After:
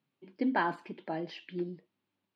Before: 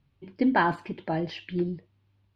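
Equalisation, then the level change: high-pass 190 Hz 24 dB/octave; -6.5 dB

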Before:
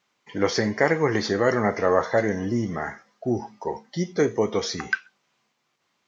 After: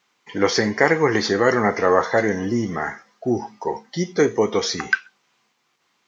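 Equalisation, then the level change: bass shelf 170 Hz -7.5 dB; peaking EQ 600 Hz -7 dB 0.21 oct; +5.5 dB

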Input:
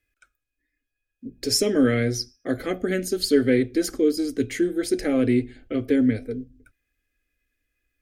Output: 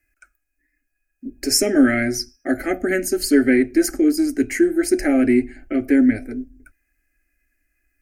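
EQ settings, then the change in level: peaking EQ 180 Hz -6 dB 0.95 oct; static phaser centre 710 Hz, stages 8; +8.5 dB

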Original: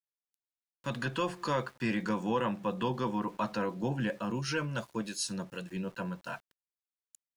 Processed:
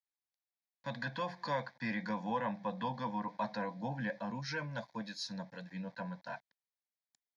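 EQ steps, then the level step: band-pass 170–4600 Hz; static phaser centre 1.9 kHz, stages 8; 0.0 dB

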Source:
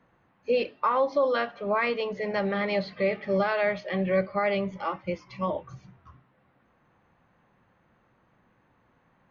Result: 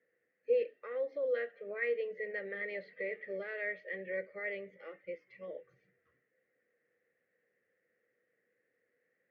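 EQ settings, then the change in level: two resonant band-passes 950 Hz, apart 2 oct; -3.0 dB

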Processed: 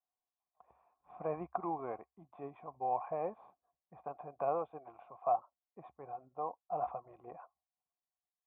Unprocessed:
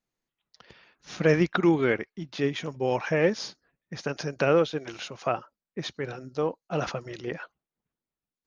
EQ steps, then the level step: cascade formant filter a; distance through air 130 m; peaking EQ 67 Hz +12 dB 0.38 oct; +4.5 dB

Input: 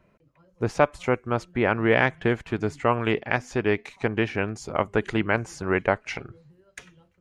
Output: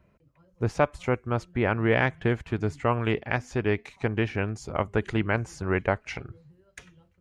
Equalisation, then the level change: peaking EQ 69 Hz +9 dB 1.9 oct; -3.5 dB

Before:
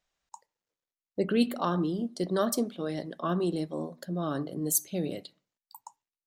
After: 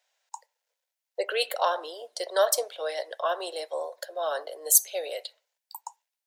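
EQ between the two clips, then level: steep high-pass 500 Hz 48 dB/octave; band-stop 1.2 kHz, Q 5.2; +8.0 dB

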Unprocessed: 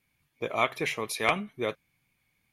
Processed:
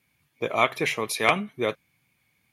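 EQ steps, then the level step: high-pass 70 Hz; +4.5 dB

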